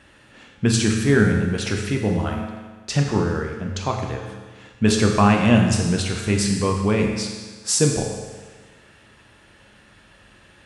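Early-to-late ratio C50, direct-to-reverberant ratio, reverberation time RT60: 3.5 dB, 1.0 dB, 1.4 s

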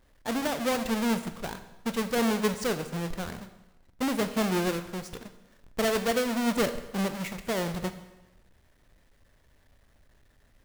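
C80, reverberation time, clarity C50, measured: 13.0 dB, 1.0 s, 11.5 dB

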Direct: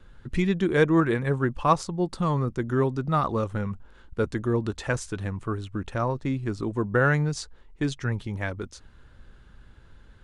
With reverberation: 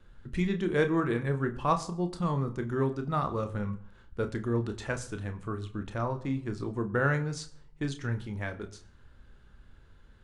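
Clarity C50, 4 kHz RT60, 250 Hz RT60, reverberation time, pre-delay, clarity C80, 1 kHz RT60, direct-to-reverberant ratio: 15.5 dB, 0.45 s, 0.65 s, 0.65 s, 29 ms, 19.0 dB, 0.65 s, 7.5 dB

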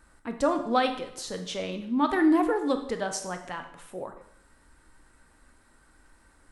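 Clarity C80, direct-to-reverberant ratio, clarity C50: 12.0 dB, 6.0 dB, 9.5 dB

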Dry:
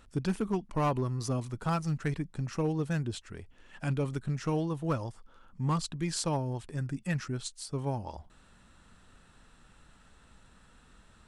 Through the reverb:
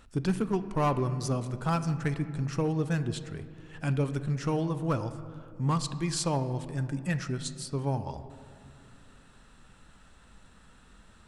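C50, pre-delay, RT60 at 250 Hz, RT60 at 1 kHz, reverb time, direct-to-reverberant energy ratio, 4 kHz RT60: 12.5 dB, 5 ms, 3.2 s, 2.2 s, 2.5 s, 11.0 dB, 1.2 s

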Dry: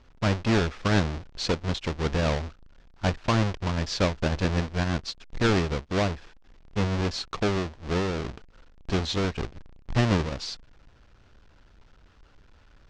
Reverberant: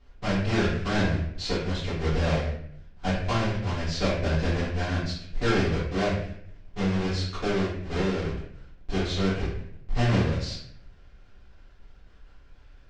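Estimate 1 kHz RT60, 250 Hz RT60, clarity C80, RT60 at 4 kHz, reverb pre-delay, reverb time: 0.60 s, 0.80 s, 6.0 dB, 0.50 s, 3 ms, 0.65 s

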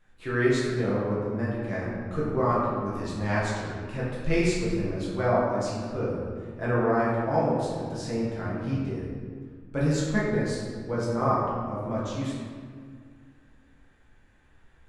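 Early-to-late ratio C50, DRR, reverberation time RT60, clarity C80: -0.5 dB, -8.0 dB, 1.9 s, 1.5 dB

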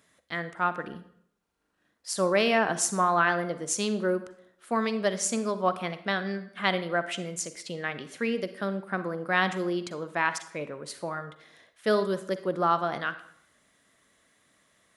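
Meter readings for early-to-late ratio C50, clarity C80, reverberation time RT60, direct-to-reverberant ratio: 12.5 dB, 15.5 dB, 0.70 s, 11.5 dB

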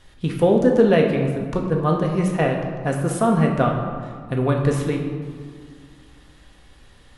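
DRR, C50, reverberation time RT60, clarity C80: 0.5 dB, 4.5 dB, 2.1 s, 6.0 dB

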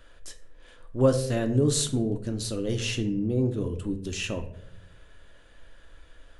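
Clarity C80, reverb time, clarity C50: 15.5 dB, 0.80 s, 11.5 dB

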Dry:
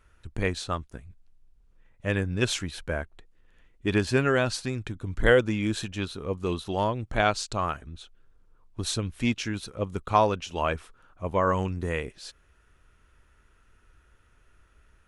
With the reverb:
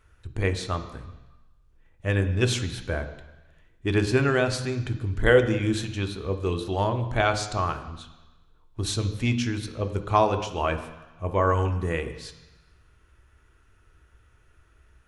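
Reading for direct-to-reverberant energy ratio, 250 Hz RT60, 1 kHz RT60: 7.0 dB, 1.0 s, 1.2 s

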